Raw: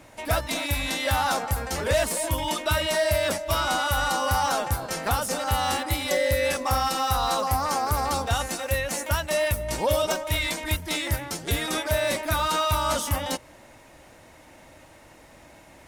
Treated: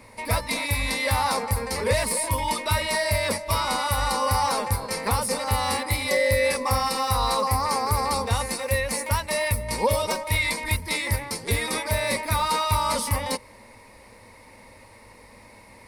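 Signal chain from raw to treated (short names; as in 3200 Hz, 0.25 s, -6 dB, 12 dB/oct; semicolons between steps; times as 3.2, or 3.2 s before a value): ripple EQ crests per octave 0.91, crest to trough 11 dB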